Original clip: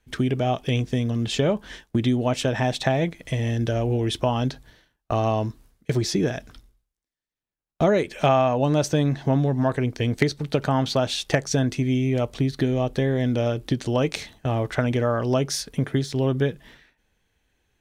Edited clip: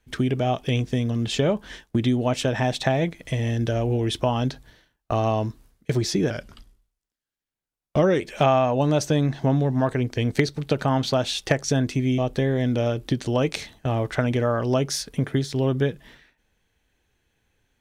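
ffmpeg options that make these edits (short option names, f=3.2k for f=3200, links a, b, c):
-filter_complex "[0:a]asplit=4[a][b][c][d];[a]atrim=end=6.304[e];[b]atrim=start=6.3:end=8.03,asetpts=PTS-STARTPTS,asetrate=40131,aresample=44100,atrim=end_sample=83838,asetpts=PTS-STARTPTS[f];[c]atrim=start=8.026:end=12.012[g];[d]atrim=start=12.778[h];[e][f]acrossfade=d=0.004:c1=hsin:c2=hsin[i];[i][g]acrossfade=d=0.004:c1=hsin:c2=hsin[j];[j][h]acrossfade=d=0.004:c1=hsin:c2=hsin"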